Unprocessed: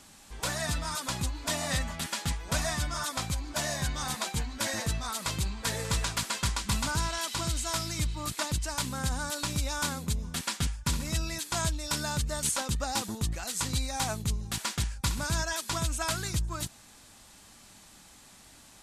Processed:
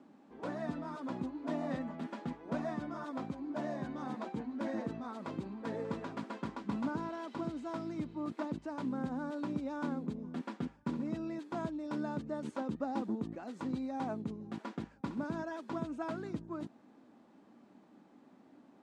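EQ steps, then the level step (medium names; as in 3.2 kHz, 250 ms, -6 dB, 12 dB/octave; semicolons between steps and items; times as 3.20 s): ladder band-pass 310 Hz, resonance 45%; tilt EQ +3 dB/octave; bass shelf 340 Hz +5 dB; +14.0 dB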